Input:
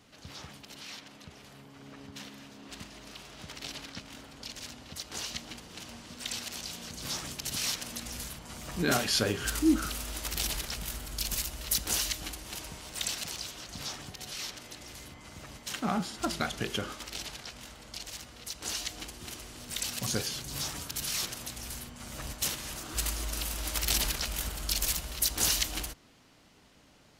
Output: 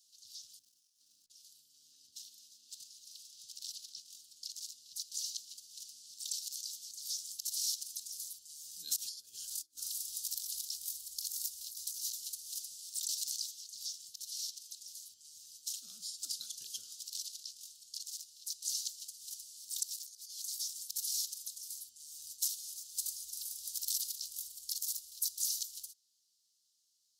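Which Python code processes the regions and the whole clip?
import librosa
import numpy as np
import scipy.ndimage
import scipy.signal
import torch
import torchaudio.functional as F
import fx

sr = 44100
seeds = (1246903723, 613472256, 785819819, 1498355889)

y = fx.chain(x, sr, fx.high_shelf(hz=2800.0, db=-6.5),
    fx.over_compress(threshold_db=-54.0, ratio=-0.5),
    fx.running_max(window=9), at=(0.59, 1.3))
y = fx.chain(y, sr, fx.over_compress(threshold_db=-34.0, ratio=-0.5),
    fx.echo_single(ms=458, db=-18.0), at=(8.96, 13.46))
y = fx.chain(y, sr, fx.highpass(hz=380.0, slope=24),
    fx.over_compress(threshold_db=-41.0, ratio=-0.5), at=(19.83, 20.6))
y = scipy.signal.sosfilt(scipy.signal.cheby2(4, 40, 2300.0, 'highpass', fs=sr, output='sos'), y)
y = fx.rider(y, sr, range_db=4, speed_s=2.0)
y = y * librosa.db_to_amplitude(-2.5)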